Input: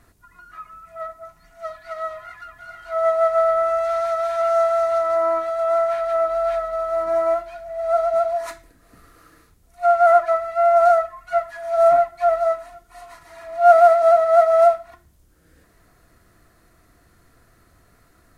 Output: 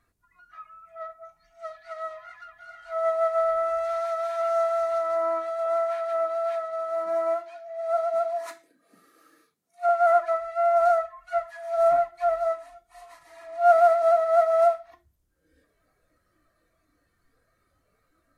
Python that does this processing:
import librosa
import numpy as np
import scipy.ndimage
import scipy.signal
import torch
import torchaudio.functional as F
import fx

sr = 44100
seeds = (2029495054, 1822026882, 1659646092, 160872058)

y = fx.highpass(x, sr, hz=160.0, slope=24, at=(5.66, 9.89))
y = fx.noise_reduce_blind(y, sr, reduce_db=11)
y = y * librosa.db_to_amplitude(-6.0)